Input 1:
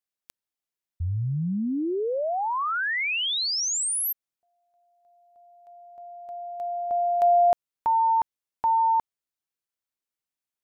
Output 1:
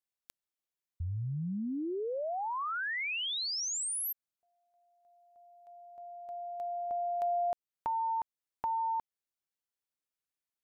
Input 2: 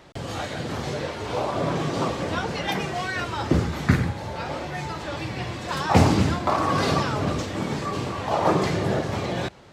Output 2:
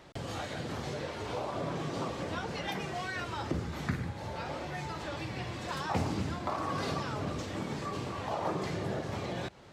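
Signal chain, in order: compressor 2:1, threshold -32 dBFS; gain -4.5 dB

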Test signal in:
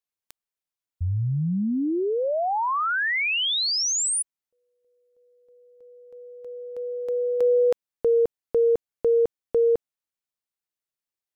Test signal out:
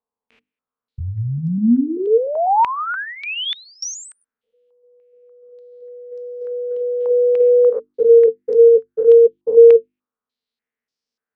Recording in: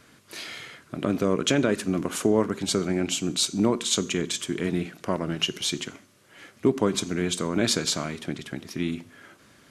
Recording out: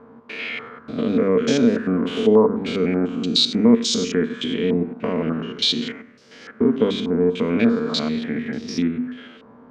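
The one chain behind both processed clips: stepped spectrum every 0.1 s; notches 50/100/150/200/250/300/350 Hz; small resonant body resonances 240/450 Hz, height 17 dB, ringing for 0.1 s; in parallel at +1 dB: compressor, threshold -27 dBFS; on the sum: stepped low-pass 3.4 Hz 950–5200 Hz; gain -2.5 dB

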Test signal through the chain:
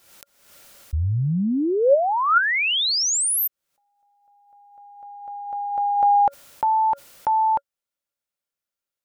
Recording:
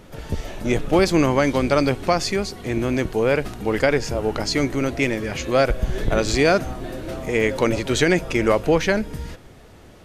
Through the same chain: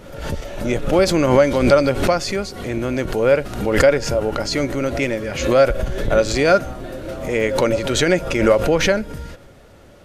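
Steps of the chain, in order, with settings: small resonant body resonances 560/1400 Hz, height 10 dB, ringing for 60 ms; backwards sustainer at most 68 dB/s; gain -1 dB

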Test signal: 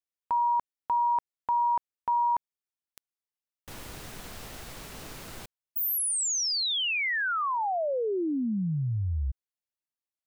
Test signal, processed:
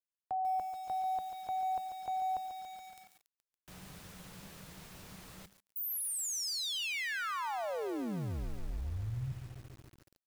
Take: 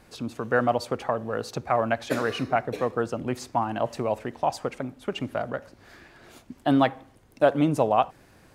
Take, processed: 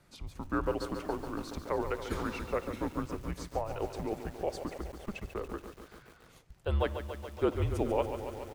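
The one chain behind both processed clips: frequency shift -200 Hz; speakerphone echo 0.1 s, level -25 dB; lo-fi delay 0.141 s, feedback 80%, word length 7-bit, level -9 dB; gain -9 dB

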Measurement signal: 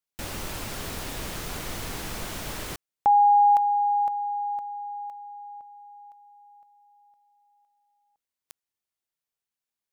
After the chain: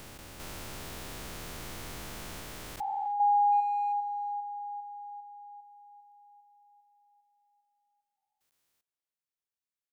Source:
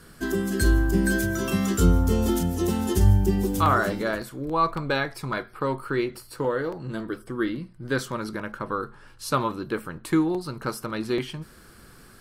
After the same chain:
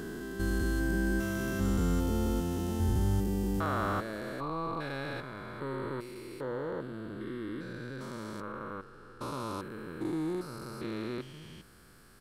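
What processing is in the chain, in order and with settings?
stepped spectrum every 0.4 s; speakerphone echo 0.32 s, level -20 dB; gain -6 dB

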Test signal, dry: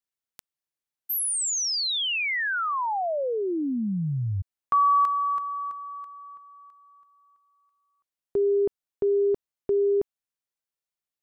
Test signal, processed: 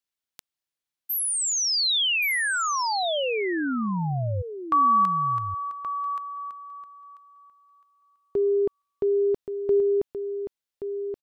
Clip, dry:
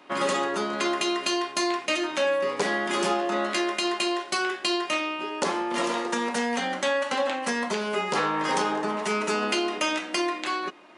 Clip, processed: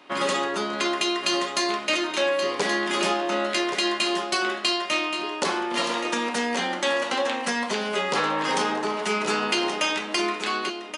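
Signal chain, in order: bell 3600 Hz +4 dB 1.5 oct; on a send: echo 1.126 s -8.5 dB

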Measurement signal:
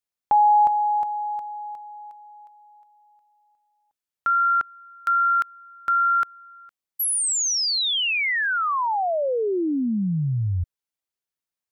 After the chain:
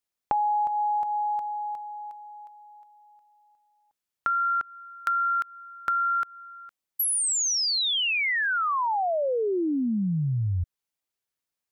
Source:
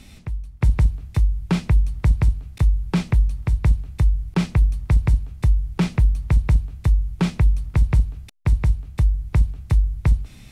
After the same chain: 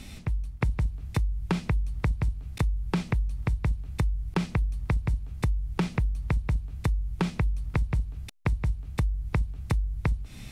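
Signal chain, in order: compressor 6:1, threshold -26 dBFS; gain +2 dB

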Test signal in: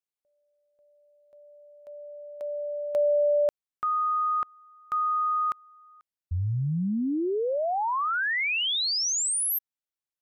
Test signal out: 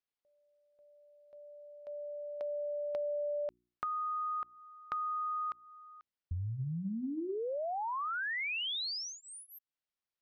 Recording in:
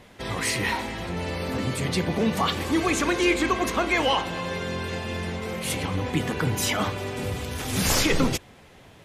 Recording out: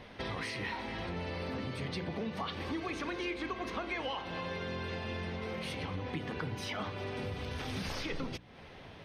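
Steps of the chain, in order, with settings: notches 60/120/180/240/300/360 Hz; compressor 5:1, threshold -36 dBFS; polynomial smoothing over 15 samples

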